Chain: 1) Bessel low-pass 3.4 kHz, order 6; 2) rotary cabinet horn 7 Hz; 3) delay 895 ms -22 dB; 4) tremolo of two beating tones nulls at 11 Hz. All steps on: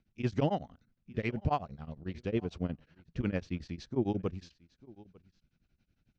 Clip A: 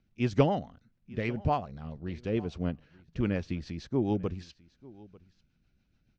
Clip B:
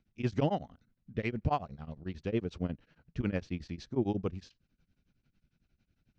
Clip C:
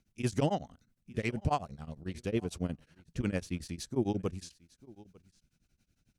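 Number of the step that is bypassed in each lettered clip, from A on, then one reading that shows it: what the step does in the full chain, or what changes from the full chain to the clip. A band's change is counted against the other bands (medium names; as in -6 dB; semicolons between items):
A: 4, momentary loudness spread change +3 LU; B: 3, momentary loudness spread change -1 LU; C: 1, 4 kHz band +3.5 dB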